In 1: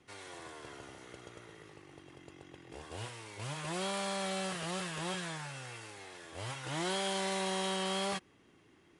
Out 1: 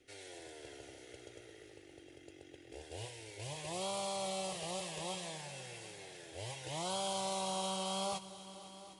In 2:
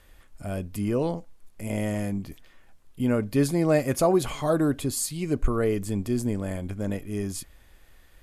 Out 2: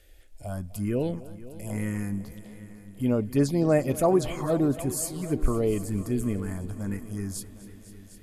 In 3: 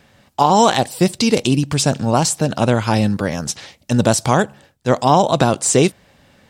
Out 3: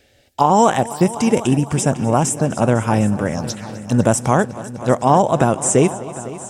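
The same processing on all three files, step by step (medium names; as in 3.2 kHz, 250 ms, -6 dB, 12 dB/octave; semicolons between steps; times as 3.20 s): touch-sensitive phaser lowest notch 170 Hz, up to 4.3 kHz, full sweep at -16 dBFS; multi-head delay 252 ms, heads all three, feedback 44%, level -19 dB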